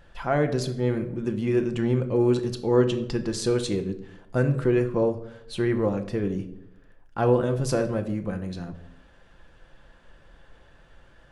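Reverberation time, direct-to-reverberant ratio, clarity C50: 0.85 s, 6.5 dB, 12.0 dB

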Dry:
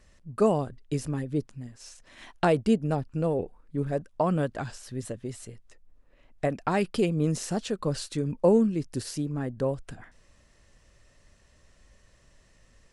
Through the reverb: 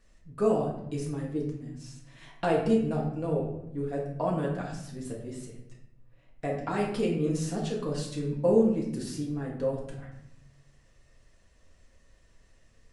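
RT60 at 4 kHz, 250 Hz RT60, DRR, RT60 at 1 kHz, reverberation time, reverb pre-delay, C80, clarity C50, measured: 0.55 s, 1.3 s, -3.0 dB, 0.75 s, 0.80 s, 4 ms, 7.5 dB, 4.0 dB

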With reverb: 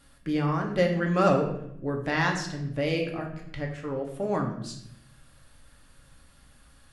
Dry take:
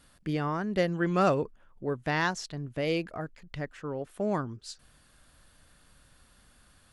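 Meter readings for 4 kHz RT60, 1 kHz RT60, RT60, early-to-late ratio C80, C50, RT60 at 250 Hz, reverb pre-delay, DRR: 0.55 s, 0.65 s, 0.75 s, 9.0 dB, 7.0 dB, 1.0 s, 4 ms, 0.5 dB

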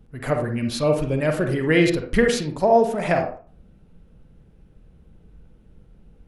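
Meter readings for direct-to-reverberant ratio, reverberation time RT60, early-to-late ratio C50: 3.5 dB, 0.40 s, 5.5 dB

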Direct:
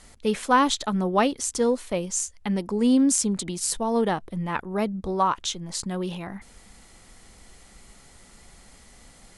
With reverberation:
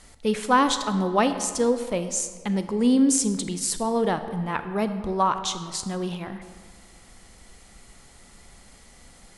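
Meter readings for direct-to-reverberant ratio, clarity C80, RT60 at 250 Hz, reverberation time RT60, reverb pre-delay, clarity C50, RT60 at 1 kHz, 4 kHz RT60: 9.5 dB, 11.0 dB, 1.7 s, 1.8 s, 30 ms, 10.0 dB, 1.8 s, 1.2 s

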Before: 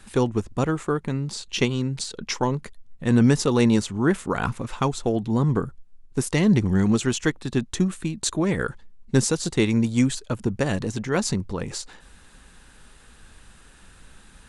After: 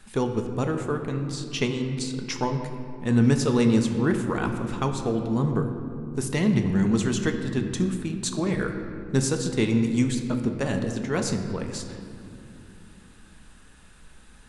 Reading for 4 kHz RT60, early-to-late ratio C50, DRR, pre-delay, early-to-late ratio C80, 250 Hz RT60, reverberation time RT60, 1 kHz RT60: 1.4 s, 7.0 dB, 4.5 dB, 5 ms, 8.0 dB, 4.3 s, 2.7 s, 2.3 s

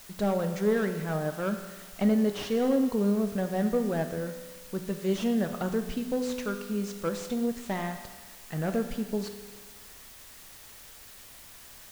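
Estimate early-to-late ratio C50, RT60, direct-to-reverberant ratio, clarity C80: 8.0 dB, 1.4 s, 6.0 dB, 9.5 dB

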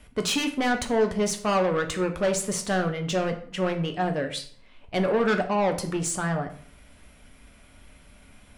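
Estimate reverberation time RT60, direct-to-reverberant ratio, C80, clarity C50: 0.50 s, 4.5 dB, 15.0 dB, 11.5 dB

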